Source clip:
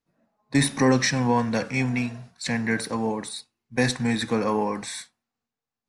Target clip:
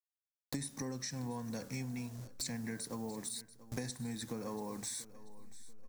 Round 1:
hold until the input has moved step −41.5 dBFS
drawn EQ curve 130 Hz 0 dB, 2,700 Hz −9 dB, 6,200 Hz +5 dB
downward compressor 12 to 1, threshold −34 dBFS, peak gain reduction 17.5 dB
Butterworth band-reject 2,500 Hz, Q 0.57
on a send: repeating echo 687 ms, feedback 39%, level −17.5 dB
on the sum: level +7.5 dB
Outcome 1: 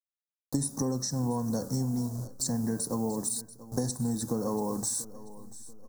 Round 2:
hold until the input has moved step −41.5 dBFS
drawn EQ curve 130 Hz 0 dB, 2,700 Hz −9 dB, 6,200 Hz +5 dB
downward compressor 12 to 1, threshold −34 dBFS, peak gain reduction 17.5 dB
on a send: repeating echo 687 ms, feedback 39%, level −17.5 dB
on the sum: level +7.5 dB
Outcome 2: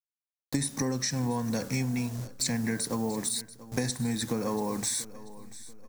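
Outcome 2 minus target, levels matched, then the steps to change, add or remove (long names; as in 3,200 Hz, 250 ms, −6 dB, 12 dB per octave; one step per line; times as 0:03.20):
downward compressor: peak gain reduction −11 dB
change: downward compressor 12 to 1, threshold −46 dBFS, peak gain reduction 28.5 dB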